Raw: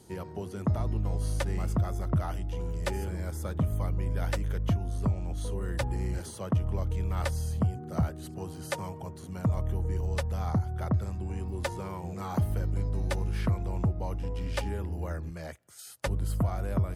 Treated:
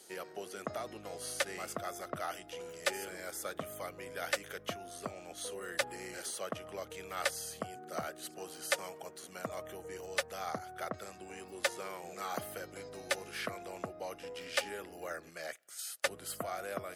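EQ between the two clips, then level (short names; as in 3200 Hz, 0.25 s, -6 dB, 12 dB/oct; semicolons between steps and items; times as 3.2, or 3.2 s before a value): HPF 670 Hz 12 dB/oct; bell 950 Hz -13 dB 0.37 oct; +4.5 dB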